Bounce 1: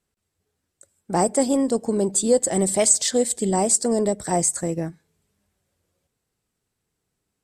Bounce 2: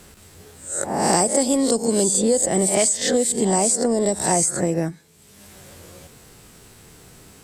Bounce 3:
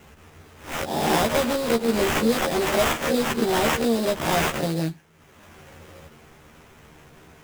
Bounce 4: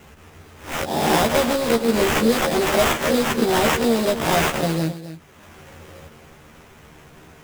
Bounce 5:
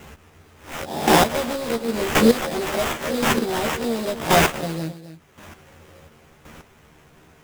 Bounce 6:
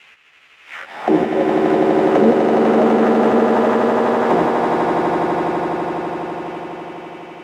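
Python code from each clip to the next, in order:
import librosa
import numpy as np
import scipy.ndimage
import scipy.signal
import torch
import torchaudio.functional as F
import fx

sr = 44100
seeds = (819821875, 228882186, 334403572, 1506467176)

y1 = fx.spec_swells(x, sr, rise_s=0.39)
y1 = fx.band_squash(y1, sr, depth_pct=100)
y2 = fx.sample_hold(y1, sr, seeds[0], rate_hz=4400.0, jitter_pct=20)
y2 = fx.doubler(y2, sr, ms=13.0, db=-2.5)
y2 = y2 * librosa.db_to_amplitude(-4.5)
y3 = y2 + 10.0 ** (-13.0 / 20.0) * np.pad(y2, (int(265 * sr / 1000.0), 0))[:len(y2)]
y3 = y3 * librosa.db_to_amplitude(3.0)
y4 = fx.chopper(y3, sr, hz=0.93, depth_pct=65, duty_pct=15)
y4 = y4 * librosa.db_to_amplitude(3.5)
y5 = fx.auto_wah(y4, sr, base_hz=320.0, top_hz=2700.0, q=2.6, full_db=-14.5, direction='down')
y5 = fx.echo_swell(y5, sr, ms=83, loudest=8, wet_db=-5)
y5 = y5 * librosa.db_to_amplitude(7.0)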